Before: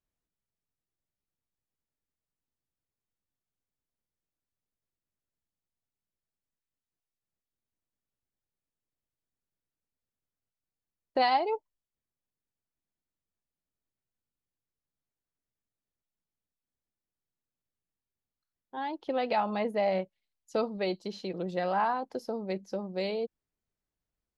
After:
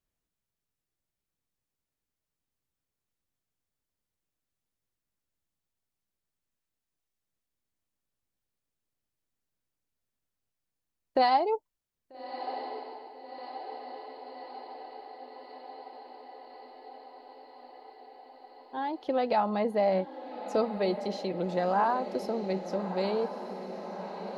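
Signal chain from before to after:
dynamic equaliser 2,600 Hz, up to −7 dB, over −48 dBFS, Q 1.1
feedback delay with all-pass diffusion 1,273 ms, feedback 74%, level −11 dB
level +2.5 dB

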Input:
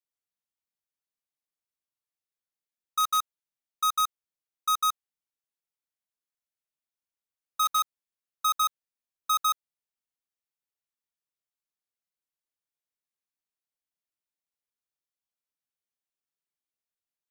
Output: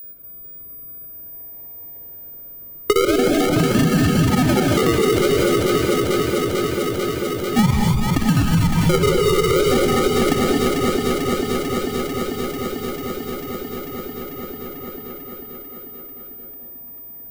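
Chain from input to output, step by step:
delay that plays each chunk backwards 380 ms, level −3 dB
treble cut that deepens with the level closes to 1,600 Hz, closed at −28.5 dBFS
output level in coarse steps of 11 dB
granular cloud, pitch spread up and down by 0 semitones
sample-and-hold swept by an LFO 42×, swing 60% 0.46 Hz
steady tone 15,000 Hz −68 dBFS
delay that swaps between a low-pass and a high-pass 222 ms, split 980 Hz, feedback 81%, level −4 dB
reverb whose tail is shaped and stops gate 270 ms rising, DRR 1.5 dB
boost into a limiter +28.5 dB
multiband upward and downward compressor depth 70%
level −7 dB

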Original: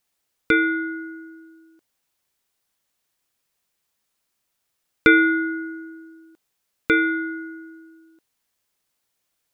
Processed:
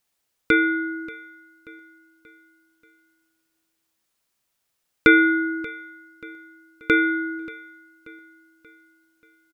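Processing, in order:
repeating echo 583 ms, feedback 46%, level −19 dB

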